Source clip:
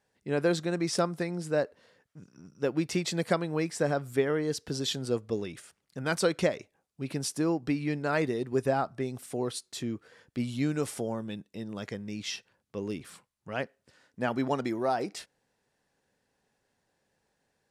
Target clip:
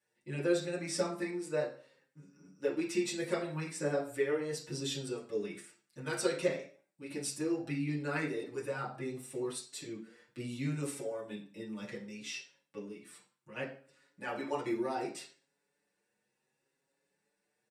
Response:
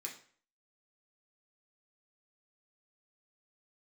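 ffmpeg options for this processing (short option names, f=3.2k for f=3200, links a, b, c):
-filter_complex "[0:a]asettb=1/sr,asplit=3[a][b][c];[a]atrim=end=12.784[d];[b]atrim=start=12.78:end=13.56,asetpts=PTS-STARTPTS,afade=t=in:d=0.004:c=qsin,afade=t=out:st=0.776:d=0.004:c=qsin,acompressor=threshold=-41dB:ratio=4[e];[c]atrim=start=13.556[f];[d][e]acrossfade=d=0.004:c1=hsin:c2=qsin[g];[g][f]acrossfade=d=0.004:c1=qsin:c2=hsin[h];[1:a]atrim=start_sample=2205,asetrate=48510,aresample=44100[i];[h][i]afir=irnorm=-1:irlink=0,asplit=2[j][k];[k]adelay=6.2,afreqshift=0.68[l];[j][l]amix=inputs=2:normalize=1,volume=1.5dB"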